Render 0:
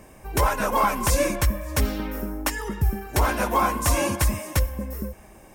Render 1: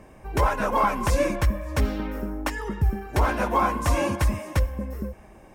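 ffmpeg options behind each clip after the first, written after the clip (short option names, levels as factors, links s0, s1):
-af "lowpass=f=2600:p=1"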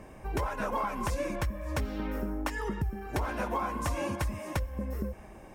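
-af "acompressor=threshold=0.0355:ratio=6"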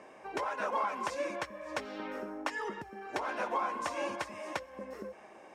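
-af "highpass=410,lowpass=6400"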